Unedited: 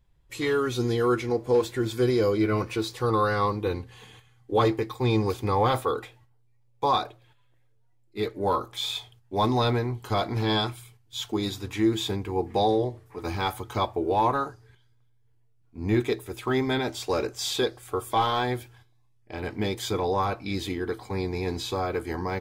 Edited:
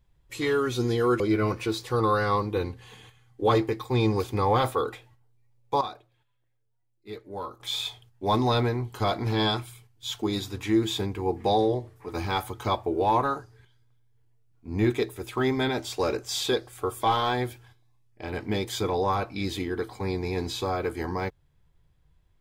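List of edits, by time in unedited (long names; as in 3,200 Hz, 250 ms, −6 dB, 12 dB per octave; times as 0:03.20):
0:01.20–0:02.30: remove
0:06.91–0:08.70: clip gain −10.5 dB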